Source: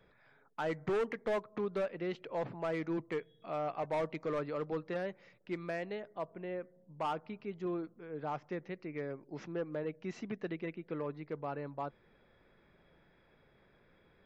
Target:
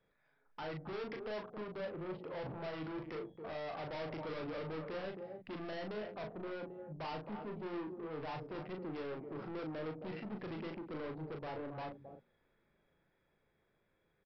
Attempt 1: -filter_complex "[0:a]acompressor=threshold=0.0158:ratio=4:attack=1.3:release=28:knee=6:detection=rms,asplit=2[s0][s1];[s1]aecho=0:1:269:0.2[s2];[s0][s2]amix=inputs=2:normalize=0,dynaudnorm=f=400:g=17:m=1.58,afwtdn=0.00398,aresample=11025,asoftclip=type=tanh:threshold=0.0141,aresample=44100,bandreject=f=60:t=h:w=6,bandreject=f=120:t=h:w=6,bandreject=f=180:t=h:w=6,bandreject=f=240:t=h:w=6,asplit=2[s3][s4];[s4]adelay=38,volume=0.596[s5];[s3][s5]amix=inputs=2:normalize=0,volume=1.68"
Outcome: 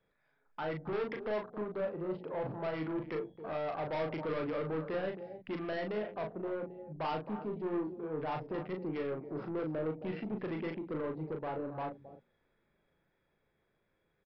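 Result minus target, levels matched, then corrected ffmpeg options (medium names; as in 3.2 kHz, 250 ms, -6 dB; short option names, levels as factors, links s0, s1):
saturation: distortion -7 dB
-filter_complex "[0:a]acompressor=threshold=0.0158:ratio=4:attack=1.3:release=28:knee=6:detection=rms,asplit=2[s0][s1];[s1]aecho=0:1:269:0.2[s2];[s0][s2]amix=inputs=2:normalize=0,dynaudnorm=f=400:g=17:m=1.58,afwtdn=0.00398,aresample=11025,asoftclip=type=tanh:threshold=0.00501,aresample=44100,bandreject=f=60:t=h:w=6,bandreject=f=120:t=h:w=6,bandreject=f=180:t=h:w=6,bandreject=f=240:t=h:w=6,asplit=2[s3][s4];[s4]adelay=38,volume=0.596[s5];[s3][s5]amix=inputs=2:normalize=0,volume=1.68"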